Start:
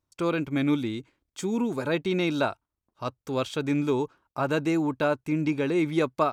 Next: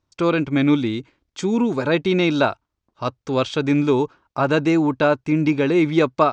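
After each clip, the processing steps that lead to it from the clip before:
low-pass filter 6,400 Hz 24 dB per octave
level +7.5 dB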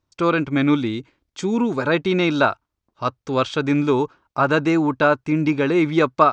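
dynamic equaliser 1,300 Hz, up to +6 dB, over −34 dBFS, Q 1.6
level −1 dB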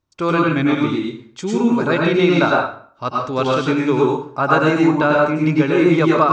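convolution reverb RT60 0.50 s, pre-delay 87 ms, DRR −2.5 dB
level −1 dB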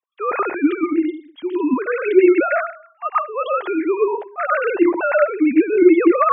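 three sine waves on the formant tracks
level −1 dB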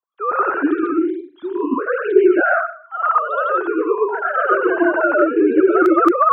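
high shelf with overshoot 1,700 Hz −6.5 dB, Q 3
delay with pitch and tempo change per echo 111 ms, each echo +1 semitone, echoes 2
level −2.5 dB

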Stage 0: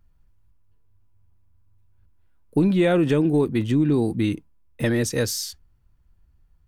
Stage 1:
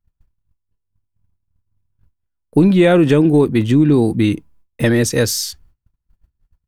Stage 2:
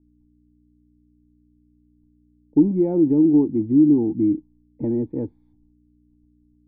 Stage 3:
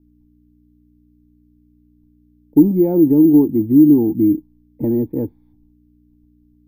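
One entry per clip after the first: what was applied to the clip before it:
noise gate −54 dBFS, range −25 dB; level +7.5 dB
mains hum 60 Hz, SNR 31 dB; formant resonators in series u
bad sample-rate conversion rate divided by 3×, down filtered, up hold; level +5 dB

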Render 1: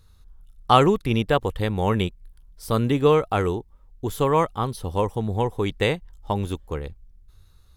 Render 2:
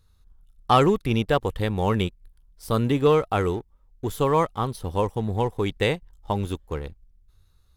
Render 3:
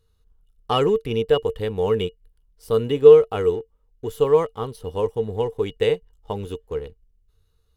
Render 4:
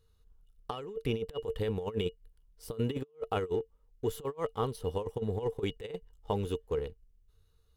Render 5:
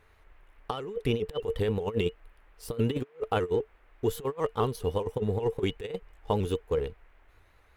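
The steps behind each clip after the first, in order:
leveller curve on the samples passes 1; level −4.5 dB
hollow resonant body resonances 450/2,900 Hz, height 17 dB, ringing for 100 ms; level −5 dB
compressor whose output falls as the input rises −25 dBFS, ratio −0.5; level −8.5 dB
noise in a band 280–2,300 Hz −71 dBFS; pitch modulation by a square or saw wave saw up 5 Hz, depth 100 cents; level +4.5 dB

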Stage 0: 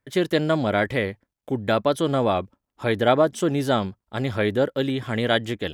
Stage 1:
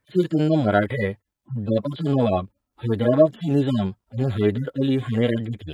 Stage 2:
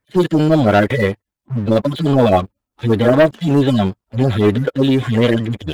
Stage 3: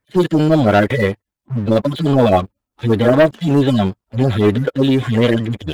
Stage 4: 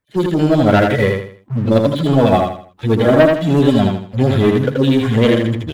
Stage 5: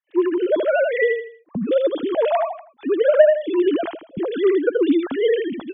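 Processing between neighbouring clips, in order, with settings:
harmonic-percussive split with one part muted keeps harmonic; level +5 dB
leveller curve on the samples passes 2; harmonic and percussive parts rebalanced harmonic −6 dB; level +5.5 dB
no processing that can be heard
automatic gain control; on a send: repeating echo 80 ms, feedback 34%, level −4 dB; on the sum: level −3.5 dB
three sine waves on the formant tracks; level −5.5 dB

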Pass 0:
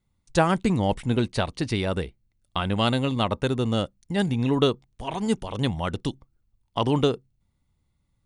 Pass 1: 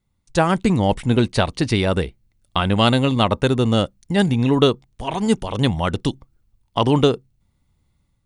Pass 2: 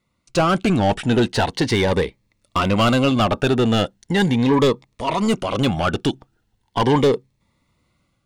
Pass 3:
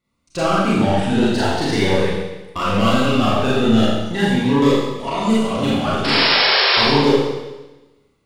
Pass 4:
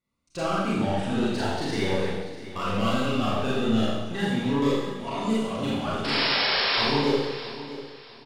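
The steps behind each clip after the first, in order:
automatic gain control gain up to 6 dB; level +1.5 dB
mid-hump overdrive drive 25 dB, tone 2,100 Hz, clips at −1 dBFS; phaser whose notches keep moving one way rising 0.39 Hz; level −5 dB
sound drawn into the spectrogram noise, 0:06.04–0:06.82, 350–5,500 Hz −16 dBFS; four-comb reverb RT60 1.1 s, combs from 28 ms, DRR −7.5 dB; level −7 dB
repeating echo 647 ms, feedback 30%, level −14.5 dB; level −9 dB

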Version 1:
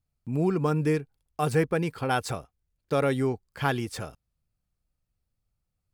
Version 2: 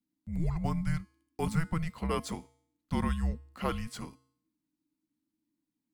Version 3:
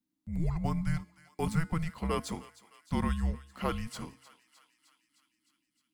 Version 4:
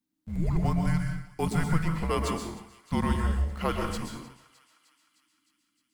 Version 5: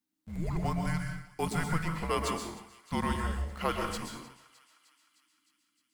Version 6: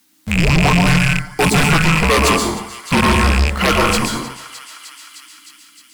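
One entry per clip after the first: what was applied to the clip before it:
tuned comb filter 200 Hz, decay 0.63 s, harmonics all, mix 50%; frequency shifter −330 Hz
feedback echo with a high-pass in the loop 307 ms, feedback 70%, high-pass 1,100 Hz, level −16 dB
mains-hum notches 50/100/150/200 Hz; in parallel at −9.5 dB: centre clipping without the shift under −41.5 dBFS; on the sum: dense smooth reverb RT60 0.59 s, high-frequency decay 0.85×, pre-delay 110 ms, DRR 2.5 dB; level +1 dB
low-shelf EQ 330 Hz −7.5 dB
loose part that buzzes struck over −38 dBFS, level −23 dBFS; sine wavefolder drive 11 dB, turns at −15 dBFS; one half of a high-frequency compander encoder only; level +6.5 dB

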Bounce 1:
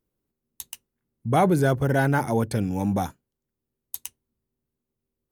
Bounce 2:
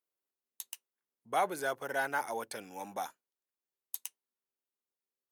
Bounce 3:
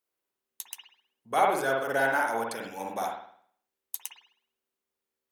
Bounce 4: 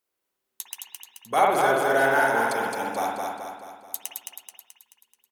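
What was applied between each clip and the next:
high-pass filter 710 Hz 12 dB per octave; level −6 dB
convolution reverb, pre-delay 52 ms, DRR −1 dB; level +4 dB
repeating echo 216 ms, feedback 51%, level −3.5 dB; level +3.5 dB

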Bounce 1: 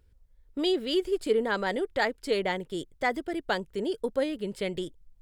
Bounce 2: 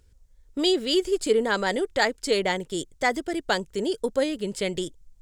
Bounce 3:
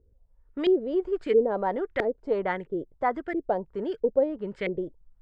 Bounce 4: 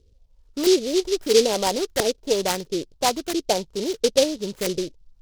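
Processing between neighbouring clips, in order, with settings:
parametric band 6,900 Hz +11 dB 1.1 octaves; level +3.5 dB
auto-filter low-pass saw up 1.5 Hz 410–2,100 Hz; level −4.5 dB
short delay modulated by noise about 4,300 Hz, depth 0.12 ms; level +4.5 dB

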